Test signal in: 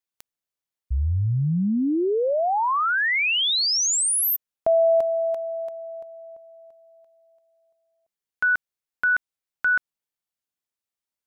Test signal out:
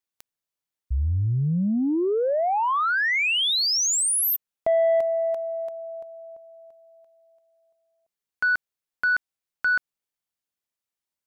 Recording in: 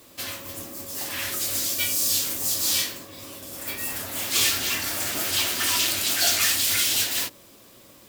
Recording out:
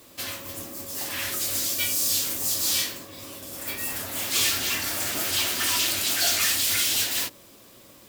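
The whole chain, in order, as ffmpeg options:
-af "asoftclip=type=tanh:threshold=-14.5dB"

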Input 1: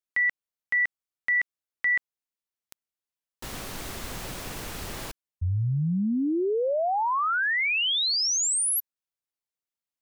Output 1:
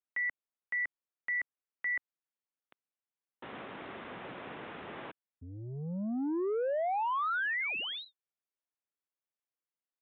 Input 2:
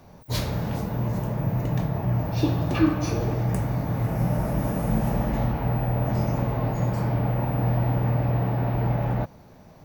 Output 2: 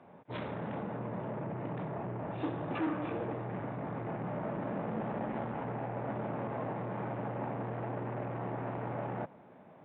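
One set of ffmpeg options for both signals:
-af "aresample=8000,asoftclip=type=tanh:threshold=-25dB,aresample=44100,highpass=220,lowpass=2.3k,volume=-3dB"

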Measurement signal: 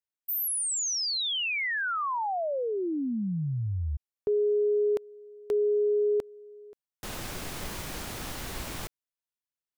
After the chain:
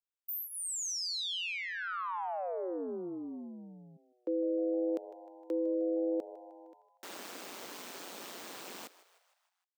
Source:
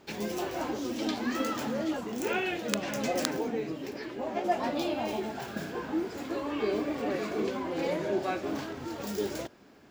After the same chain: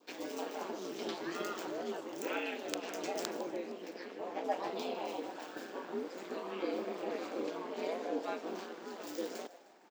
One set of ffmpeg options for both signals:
-filter_complex "[0:a]aeval=exprs='val(0)*sin(2*PI*90*n/s)':c=same,highpass=f=260:w=0.5412,highpass=f=260:w=1.3066,equalizer=f=11k:w=5.4:g=-14,asplit=6[a][b][c][d][e][f];[b]adelay=154,afreqshift=100,volume=-17.5dB[g];[c]adelay=308,afreqshift=200,volume=-22.9dB[h];[d]adelay=462,afreqshift=300,volume=-28.2dB[i];[e]adelay=616,afreqshift=400,volume=-33.6dB[j];[f]adelay=770,afreqshift=500,volume=-38.9dB[k];[a][g][h][i][j][k]amix=inputs=6:normalize=0,adynamicequalizer=threshold=0.00316:dfrequency=1900:dqfactor=2.2:tfrequency=1900:tqfactor=2.2:attack=5:release=100:ratio=0.375:range=2:mode=cutabove:tftype=bell,volume=-3.5dB"

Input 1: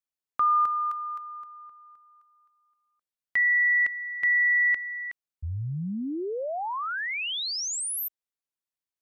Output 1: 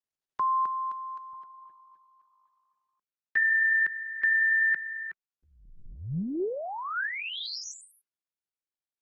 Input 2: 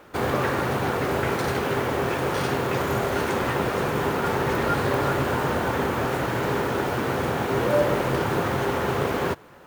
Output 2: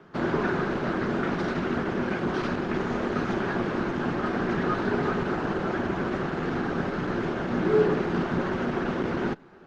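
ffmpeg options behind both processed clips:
-af "highpass=f=190:w=0.5412,highpass=f=190:w=1.3066,equalizer=f=220:t=q:w=4:g=-9,equalizer=f=330:t=q:w=4:g=8,equalizer=f=540:t=q:w=4:g=8,equalizer=f=1.7k:t=q:w=4:g=7,lowpass=f=5.7k:w=0.5412,lowpass=f=5.7k:w=1.3066,afreqshift=-160,volume=-5dB" -ar 48000 -c:a libopus -b:a 16k

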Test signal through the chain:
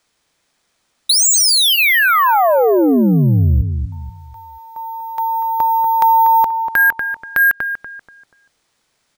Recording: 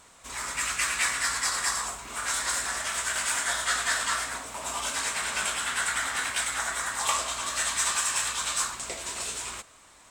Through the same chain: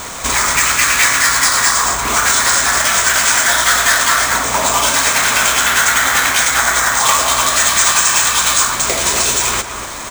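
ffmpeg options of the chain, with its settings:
-filter_complex "[0:a]acrusher=samples=3:mix=1:aa=0.000001,bandreject=f=2.8k:w=20,volume=18.5dB,asoftclip=hard,volume=-18.5dB,acompressor=threshold=-44dB:ratio=2.5,asplit=2[a][b];[b]adelay=241,lowpass=f=1.6k:p=1,volume=-7dB,asplit=2[c][d];[d]adelay=241,lowpass=f=1.6k:p=1,volume=0.37,asplit=2[e][f];[f]adelay=241,lowpass=f=1.6k:p=1,volume=0.37,asplit=2[g][h];[h]adelay=241,lowpass=f=1.6k:p=1,volume=0.37[i];[c][e][g][i]amix=inputs=4:normalize=0[j];[a][j]amix=inputs=2:normalize=0,alimiter=level_in=29.5dB:limit=-1dB:release=50:level=0:latency=1,volume=-1.5dB"

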